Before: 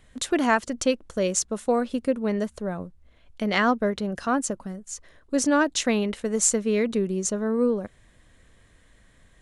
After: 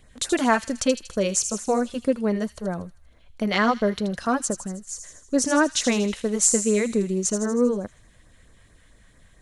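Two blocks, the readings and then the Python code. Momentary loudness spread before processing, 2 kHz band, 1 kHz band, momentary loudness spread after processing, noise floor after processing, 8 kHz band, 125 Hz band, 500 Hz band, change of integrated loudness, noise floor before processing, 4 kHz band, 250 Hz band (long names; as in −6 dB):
12 LU, +0.5 dB, +1.0 dB, 11 LU, −55 dBFS, +3.5 dB, +2.0 dB, +1.0 dB, +1.5 dB, −58 dBFS, +2.5 dB, +1.5 dB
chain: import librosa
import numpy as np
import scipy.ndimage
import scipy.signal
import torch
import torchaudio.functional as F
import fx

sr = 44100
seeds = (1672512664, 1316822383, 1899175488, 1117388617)

p1 = fx.filter_lfo_notch(x, sr, shape='sine', hz=4.5, low_hz=270.0, high_hz=3400.0, q=1.3)
p2 = p1 + fx.echo_wet_highpass(p1, sr, ms=79, feedback_pct=59, hz=3700.0, wet_db=-7, dry=0)
y = p2 * 10.0 ** (2.5 / 20.0)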